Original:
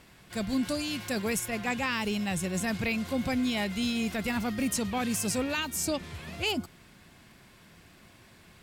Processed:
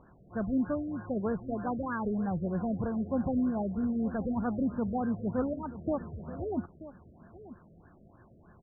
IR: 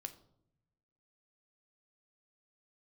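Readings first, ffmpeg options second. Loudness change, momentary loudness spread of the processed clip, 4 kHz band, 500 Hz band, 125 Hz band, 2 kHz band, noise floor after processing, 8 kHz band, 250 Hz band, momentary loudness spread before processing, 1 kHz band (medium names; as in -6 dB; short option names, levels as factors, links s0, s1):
-2.5 dB, 11 LU, under -40 dB, 0.0 dB, 0.0 dB, -13.5 dB, -58 dBFS, under -40 dB, 0.0 dB, 3 LU, -1.5 dB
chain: -filter_complex "[0:a]asplit=2[s0][s1];[s1]adelay=932.9,volume=0.178,highshelf=f=4000:g=-21[s2];[s0][s2]amix=inputs=2:normalize=0,afftfilt=real='re*lt(b*sr/1024,660*pow(1800/660,0.5+0.5*sin(2*PI*3.2*pts/sr)))':imag='im*lt(b*sr/1024,660*pow(1800/660,0.5+0.5*sin(2*PI*3.2*pts/sr)))':win_size=1024:overlap=0.75"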